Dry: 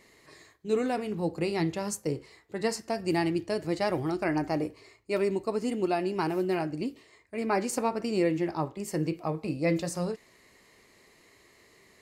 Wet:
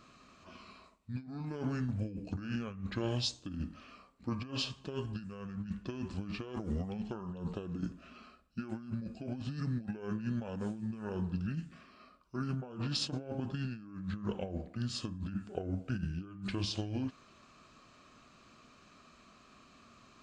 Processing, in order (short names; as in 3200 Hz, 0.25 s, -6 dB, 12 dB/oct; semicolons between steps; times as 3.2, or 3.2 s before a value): negative-ratio compressor -32 dBFS, ratio -0.5; wide varispeed 0.594×; gain -4.5 dB